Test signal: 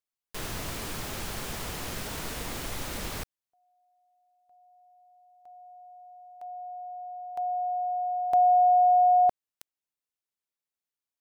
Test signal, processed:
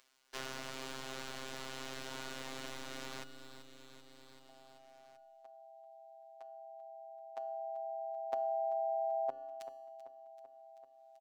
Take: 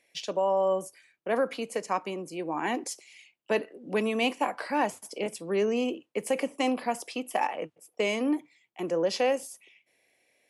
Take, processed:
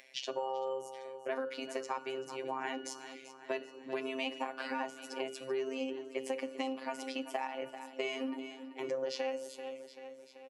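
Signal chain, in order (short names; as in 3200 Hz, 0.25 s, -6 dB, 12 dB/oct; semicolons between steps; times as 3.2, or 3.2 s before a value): notches 60/120/180/240/300/360/420/480/540 Hz; robotiser 132 Hz; resonator 290 Hz, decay 0.96 s, mix 70%; on a send: feedback echo 0.386 s, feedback 54%, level -16.5 dB; on the sum: compressor 6:1, threshold -42 dBFS; three-band isolator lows -15 dB, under 200 Hz, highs -15 dB, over 7400 Hz; upward compressor, threshold -59 dBFS; gain +10 dB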